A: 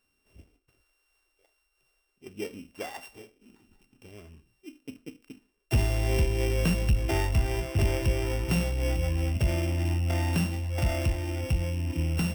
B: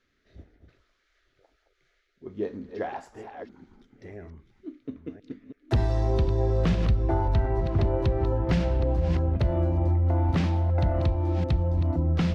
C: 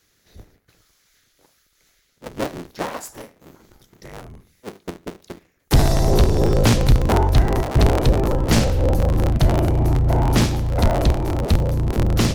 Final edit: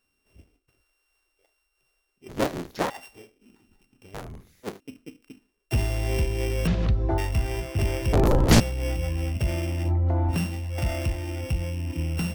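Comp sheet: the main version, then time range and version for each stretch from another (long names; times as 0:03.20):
A
0:02.29–0:02.90: punch in from C
0:04.14–0:04.80: punch in from C
0:06.67–0:07.18: punch in from B
0:08.13–0:08.60: punch in from C
0:09.87–0:10.33: punch in from B, crossfade 0.10 s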